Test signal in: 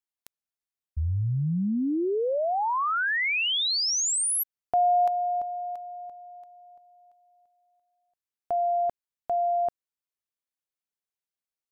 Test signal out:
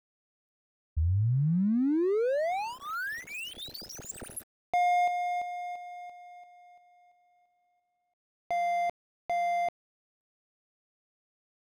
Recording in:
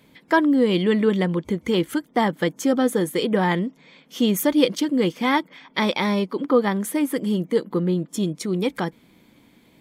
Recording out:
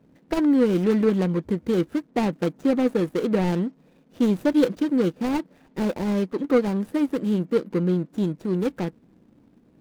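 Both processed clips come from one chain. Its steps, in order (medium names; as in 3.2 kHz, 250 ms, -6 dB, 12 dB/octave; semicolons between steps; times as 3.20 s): median filter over 41 samples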